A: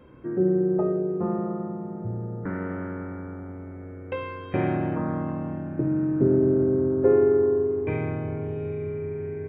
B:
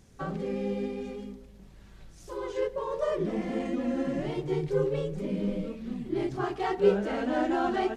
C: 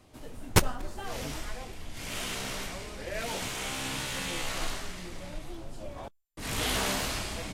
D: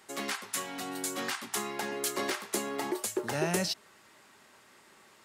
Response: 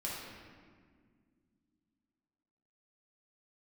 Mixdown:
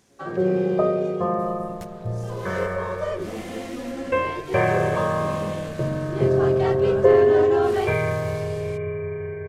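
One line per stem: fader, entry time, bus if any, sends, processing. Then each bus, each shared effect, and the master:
0.0 dB, 0.00 s, no send, expander -29 dBFS; high-order bell 1.3 kHz +8 dB 2.6 oct; comb 1.8 ms, depth 97%
+2.5 dB, 0.00 s, no send, high-pass 410 Hz 6 dB/octave
-5.0 dB, 1.25 s, no send, compression 12:1, threshold -35 dBFS, peak gain reduction 19.5 dB
-18.0 dB, 0.00 s, no send, steep low-pass 690 Hz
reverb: none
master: none

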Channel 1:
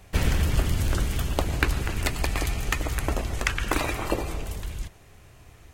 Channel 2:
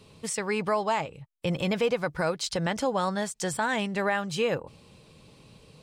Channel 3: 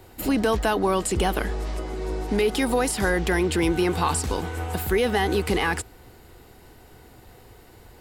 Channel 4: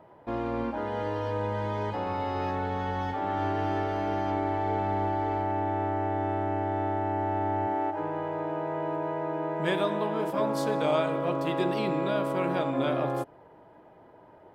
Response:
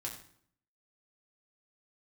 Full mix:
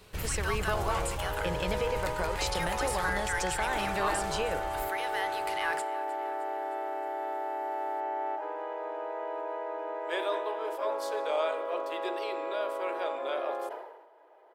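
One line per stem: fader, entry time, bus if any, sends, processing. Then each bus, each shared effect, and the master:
-10.5 dB, 0.00 s, no send, no echo send, peak limiter -15 dBFS, peak gain reduction 10.5 dB
-1.5 dB, 0.00 s, no send, no echo send, high-pass 210 Hz; compression, threshold -28 dBFS, peak gain reduction 7 dB
-12.0 dB, 0.00 s, send -9.5 dB, echo send -16 dB, resonant high-pass 1.3 kHz, resonance Q 1.8
-3.5 dB, 0.45 s, no send, no echo send, steep high-pass 390 Hz 36 dB/octave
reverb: on, RT60 0.60 s, pre-delay 4 ms
echo: feedback delay 310 ms, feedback 59%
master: peaking EQ 240 Hz -8.5 dB 0.28 oct; decay stretcher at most 55 dB/s

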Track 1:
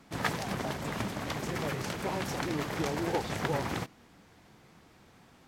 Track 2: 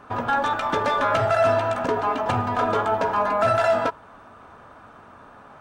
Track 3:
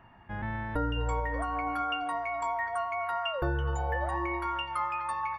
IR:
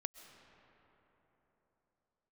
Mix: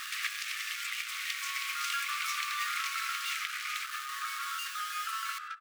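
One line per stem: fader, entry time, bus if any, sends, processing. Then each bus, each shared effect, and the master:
0.0 dB, 0.00 s, no send, resonant high shelf 1.8 kHz +7 dB, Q 3; compression, threshold -32 dBFS, peak gain reduction 12 dB
-7.0 dB, 1.65 s, send -5 dB, compression 2.5:1, threshold -31 dBFS, peak gain reduction 10.5 dB
-4.5 dB, 0.00 s, no send, one-bit comparator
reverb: on, RT60 4.0 s, pre-delay 90 ms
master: brick-wall FIR high-pass 1.1 kHz

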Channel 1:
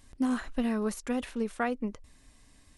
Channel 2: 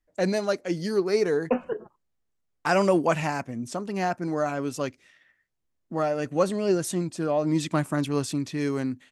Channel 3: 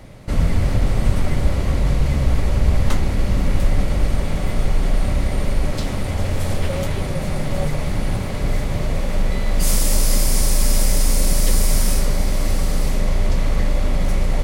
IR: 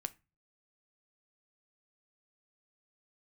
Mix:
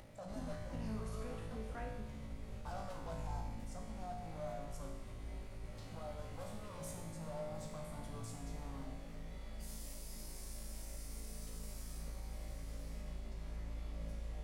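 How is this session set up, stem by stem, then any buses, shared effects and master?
-6.0 dB, 0.15 s, no send, none
-0.5 dB, 0.00 s, no send, peaking EQ 3.1 kHz -7.5 dB 2.4 oct; saturation -28.5 dBFS, distortion -7 dB; static phaser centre 880 Hz, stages 4
-15.5 dB, 0.00 s, no send, peak limiter -10 dBFS, peak gain reduction 6.5 dB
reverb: none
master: upward compressor, threshold -33 dBFS; feedback comb 55 Hz, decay 1.1 s, harmonics all, mix 90%

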